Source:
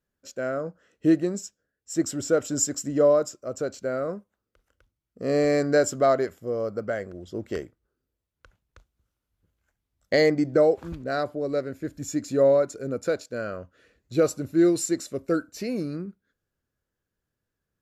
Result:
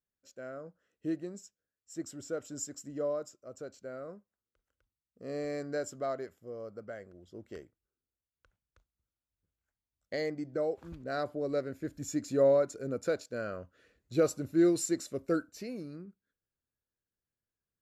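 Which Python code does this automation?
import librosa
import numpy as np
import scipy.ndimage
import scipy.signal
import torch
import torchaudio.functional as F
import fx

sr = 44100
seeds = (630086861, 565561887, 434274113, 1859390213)

y = fx.gain(x, sr, db=fx.line((10.51, -14.5), (11.33, -5.5), (15.38, -5.5), (15.79, -12.5)))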